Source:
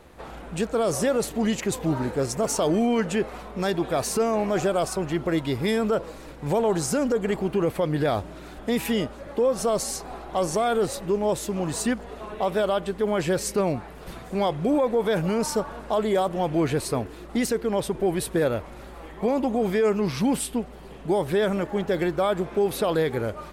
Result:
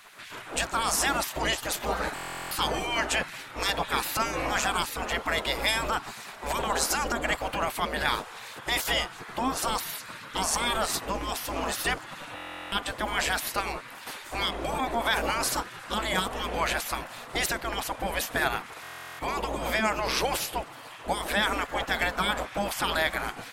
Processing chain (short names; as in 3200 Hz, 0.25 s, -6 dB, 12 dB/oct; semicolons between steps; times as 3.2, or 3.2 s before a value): spectral gate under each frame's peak -15 dB weak; stuck buffer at 2.14/12.35/18.82, samples 1024, times 15; gain +8 dB